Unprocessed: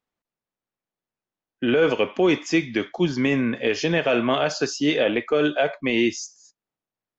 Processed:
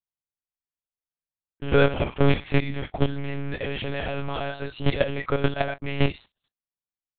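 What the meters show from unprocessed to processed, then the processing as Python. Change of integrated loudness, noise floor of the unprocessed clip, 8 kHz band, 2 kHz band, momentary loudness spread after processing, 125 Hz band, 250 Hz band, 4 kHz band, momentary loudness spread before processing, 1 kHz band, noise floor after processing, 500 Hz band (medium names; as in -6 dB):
-4.0 dB, under -85 dBFS, no reading, -5.0 dB, 11 LU, +6.0 dB, -6.5 dB, -6.0 dB, 4 LU, -2.0 dB, under -85 dBFS, -4.5 dB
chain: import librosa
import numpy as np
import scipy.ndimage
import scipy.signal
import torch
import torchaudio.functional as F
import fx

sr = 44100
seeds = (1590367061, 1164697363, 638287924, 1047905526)

y = fx.leveller(x, sr, passes=3)
y = fx.level_steps(y, sr, step_db=13)
y = fx.lpc_monotone(y, sr, seeds[0], pitch_hz=140.0, order=8)
y = y * librosa.db_to_amplitude(-2.5)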